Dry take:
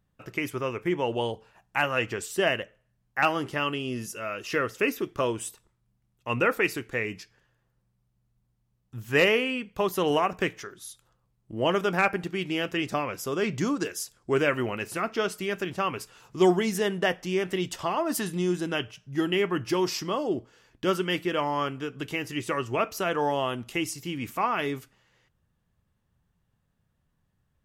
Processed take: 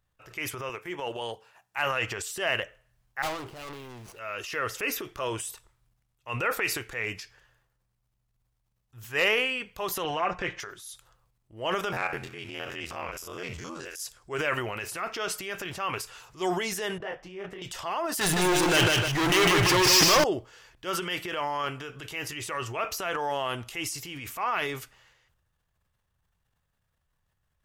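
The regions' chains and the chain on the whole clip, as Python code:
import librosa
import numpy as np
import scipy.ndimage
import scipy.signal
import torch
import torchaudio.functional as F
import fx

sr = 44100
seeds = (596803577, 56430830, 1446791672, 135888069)

y = fx.chain(x, sr, fx.highpass(hz=140.0, slope=12),
    fx.high_shelf(hz=8200.0, db=4.5),
    fx.upward_expand(threshold_db=-35.0, expansion=1.5), at=(0.69, 1.79))
y = fx.chain(y, sr, fx.median_filter(points=25),
    fx.clip_hard(threshold_db=-33.0), at=(3.22, 4.19))
y = fx.chain(y, sr, fx.air_absorb(metres=130.0),
    fx.comb(ms=5.7, depth=0.67), at=(10.04, 10.6))
y = fx.chain(y, sr, fx.spec_steps(hold_ms=50),
    fx.ring_mod(carrier_hz=43.0),
    fx.echo_wet_highpass(ms=72, feedback_pct=75, hz=2400.0, wet_db=-23.0), at=(11.92, 14.0))
y = fx.chain(y, sr, fx.lowpass(hz=1000.0, slope=6),
    fx.detune_double(cents=58), at=(16.98, 17.62))
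y = fx.chain(y, sr, fx.leveller(passes=5),
    fx.echo_feedback(ms=153, feedback_pct=27, wet_db=-4.0), at=(18.21, 20.24))
y = fx.peak_eq(y, sr, hz=220.0, db=-14.5, octaves=1.7)
y = fx.transient(y, sr, attack_db=-5, sustain_db=8)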